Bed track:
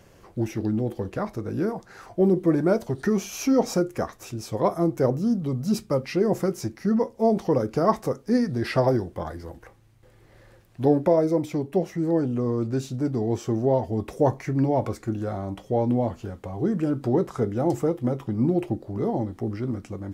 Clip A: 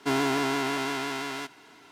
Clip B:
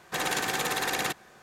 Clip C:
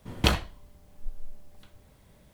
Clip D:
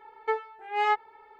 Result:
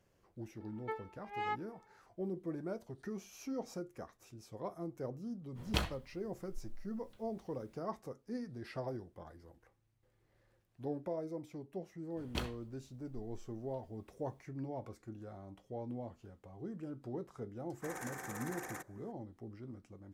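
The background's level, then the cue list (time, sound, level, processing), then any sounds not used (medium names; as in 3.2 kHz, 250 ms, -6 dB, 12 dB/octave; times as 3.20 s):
bed track -20 dB
0.60 s: add D -13 dB
5.50 s: add C -11 dB, fades 0.10 s
12.11 s: add C -16.5 dB
17.70 s: add B -15.5 dB + high-order bell 3.5 kHz -14.5 dB 1.1 oct
not used: A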